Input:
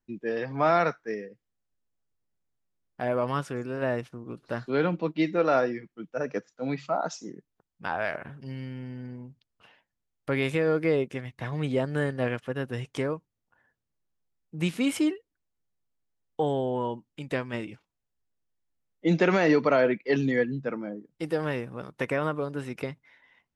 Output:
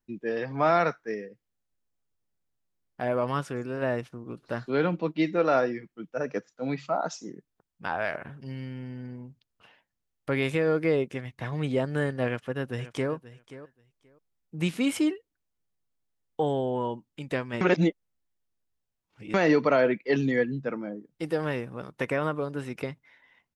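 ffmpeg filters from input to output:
-filter_complex "[0:a]asplit=2[a][b];[b]afade=t=in:st=12.25:d=0.01,afade=t=out:st=13.12:d=0.01,aecho=0:1:530|1060:0.16788|0.0251821[c];[a][c]amix=inputs=2:normalize=0,asplit=3[d][e][f];[d]atrim=end=17.612[g];[e]atrim=start=17.608:end=19.342,asetpts=PTS-STARTPTS,areverse[h];[f]atrim=start=19.338[i];[g][h]acrossfade=d=0.004:c1=hsin:c2=hsin[j];[j][i]acrossfade=d=0.004:c1=hsin:c2=hsin"

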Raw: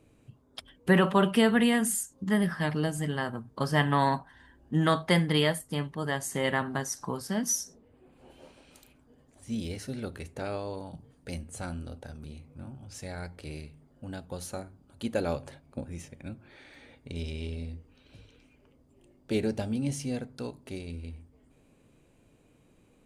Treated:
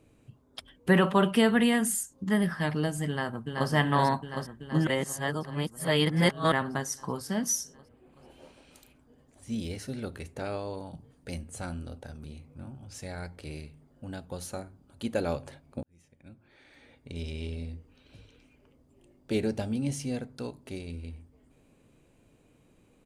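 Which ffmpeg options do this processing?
-filter_complex "[0:a]asplit=2[a][b];[b]afade=t=in:st=3.08:d=0.01,afade=t=out:st=3.7:d=0.01,aecho=0:1:380|760|1140|1520|1900|2280|2660|3040|3420|3800|4180|4560:0.668344|0.501258|0.375943|0.281958|0.211468|0.158601|0.118951|0.0892131|0.0669099|0.0501824|0.0376368|0.0282276[c];[a][c]amix=inputs=2:normalize=0,asplit=4[d][e][f][g];[d]atrim=end=4.872[h];[e]atrim=start=4.868:end=6.522,asetpts=PTS-STARTPTS,areverse[i];[f]atrim=start=6.518:end=15.83,asetpts=PTS-STARTPTS,afade=t=out:st=9.308:d=0.004:c=hsin[j];[g]atrim=start=15.83,asetpts=PTS-STARTPTS,afade=t=in:d=1.57[k];[h][i]acrossfade=d=0.004:c1=hsin:c2=hsin[l];[j][k]concat=n=2:v=0:a=1[m];[l][m]acrossfade=d=0.004:c1=hsin:c2=hsin"

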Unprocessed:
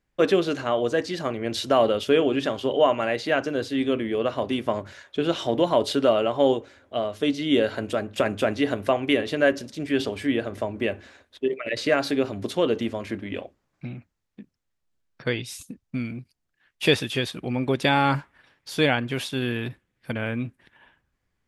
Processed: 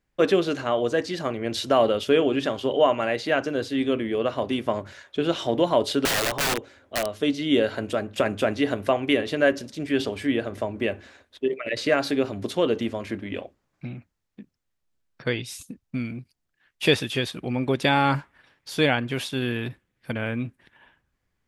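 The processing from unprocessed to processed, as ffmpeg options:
-filter_complex "[0:a]asettb=1/sr,asplit=3[a][b][c];[a]atrim=end=6.054[d];[b]atrim=start=6.05:end=7.09,asetpts=PTS-STARTPTS,afade=t=in:d=0.004:c=qsin,afade=t=out:st=1.036:d=0.004:c=qsin,aeval=exprs='(mod(8.91*val(0)+1,2)-1)/8.91':c=same[e];[c]atrim=start=7.086[f];[d][e]acrossfade=d=0.004:c1=hsin:c2=qsin[g];[g][f]acrossfade=d=0.004:c1=qsin:c2=hsin"

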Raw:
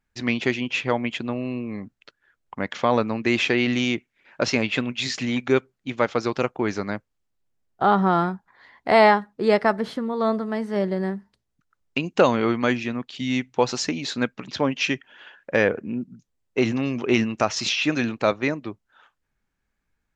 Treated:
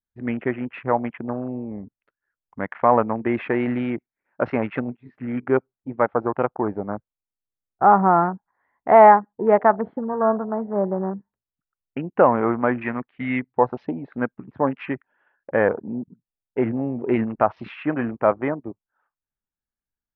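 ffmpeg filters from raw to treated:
-filter_complex "[0:a]asettb=1/sr,asplit=3[a][b][c];[a]atrim=end=1.614[d];[b]atrim=start=1.61:end=3.13,asetpts=PTS-STARTPTS,afade=t=in:d=0.004:c=qsin,afade=t=out:st=1.516:d=0.004:c=qsin,highshelf=f=3.2k:g=11.5[e];[c]atrim=start=3.126[f];[d][e]acrossfade=d=0.004:c1=hsin:c2=qsin[g];[g][f]acrossfade=d=0.004:c1=qsin:c2=hsin,asplit=3[h][i][j];[h]afade=t=out:st=12.81:d=0.02[k];[i]equalizer=f=2.1k:w=1.1:g=12.5,afade=t=in:st=12.81:d=0.02,afade=t=out:st=13.38:d=0.02[l];[j]afade=t=in:st=13.38:d=0.02[m];[k][l][m]amix=inputs=3:normalize=0,asplit=2[n][o];[n]atrim=end=4.97,asetpts=PTS-STARTPTS,afade=t=out:st=4.966:d=0.004:c=hsin:silence=0.16788[p];[o]atrim=start=4.97,asetpts=PTS-STARTPTS,afade=t=in:d=0.4:silence=0.16788[q];[p][q]concat=n=2:v=0:a=1,afwtdn=0.0282,lowpass=f=1.8k:w=0.5412,lowpass=f=1.8k:w=1.3066,adynamicequalizer=threshold=0.0178:dfrequency=820:dqfactor=1.3:tfrequency=820:tqfactor=1.3:attack=5:release=100:ratio=0.375:range=4:mode=boostabove:tftype=bell,volume=-1dB"

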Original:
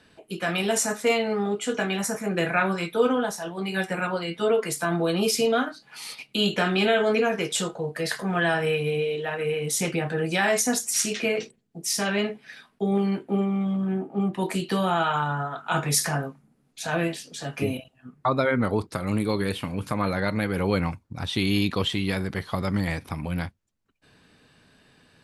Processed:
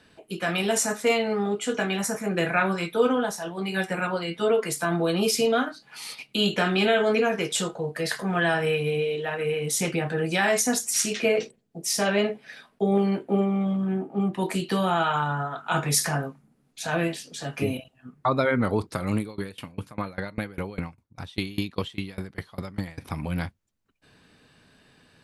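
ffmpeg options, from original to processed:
-filter_complex "[0:a]asettb=1/sr,asplit=3[a][b][c];[a]atrim=end=11.244[d];[b]atrim=start=11.24:end=13.73,asetpts=PTS-STARTPTS,afade=t=in:d=0.004:c=qsin,afade=t=out:st=2.486:d=0.004:c=qsin,equalizer=f=570:w=1.5:g=6[e];[c]atrim=start=13.726[f];[d][e]acrossfade=d=0.004:c1=hsin:c2=qsin[g];[g][f]acrossfade=d=0.004:c1=qsin:c2=hsin,asettb=1/sr,asplit=3[h][i][j];[h]atrim=end=19.184[k];[i]atrim=start=19.18:end=22.98,asetpts=PTS-STARTPTS,afade=t=in:d=0.004:c=qsin,afade=t=out:st=3.796:d=0.004:c=qsin,aeval=exprs='val(0)*pow(10,-25*if(lt(mod(5*n/s,1),2*abs(5)/1000),1-mod(5*n/s,1)/(2*abs(5)/1000),(mod(5*n/s,1)-2*abs(5)/1000)/(1-2*abs(5)/1000))/20)':c=same[l];[j]atrim=start=22.976[m];[k][l]acrossfade=d=0.004:c1=hsin:c2=qsin[n];[n][m]acrossfade=d=0.004:c1=qsin:c2=hsin"

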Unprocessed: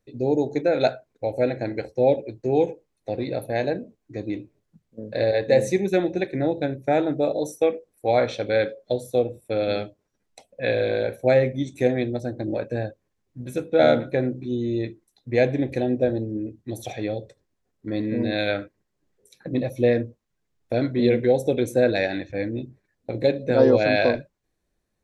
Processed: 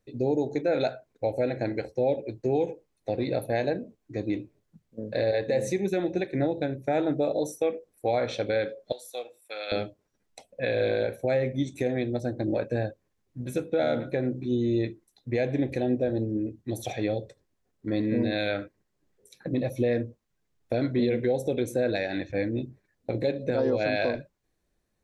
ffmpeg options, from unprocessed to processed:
-filter_complex "[0:a]asettb=1/sr,asplit=3[a][b][c];[a]atrim=end=8.924[d];[b]atrim=start=8.92:end=9.72,asetpts=PTS-STARTPTS,afade=t=in:d=0.004:c=qsin,afade=t=out:st=0.796:d=0.004:c=qsin,highpass=1.2k[e];[c]atrim=start=9.716[f];[d][e]acrossfade=d=0.004:c1=hsin:c2=qsin[g];[g][f]acrossfade=d=0.004:c1=qsin:c2=hsin,alimiter=limit=-16.5dB:level=0:latency=1:release=187"

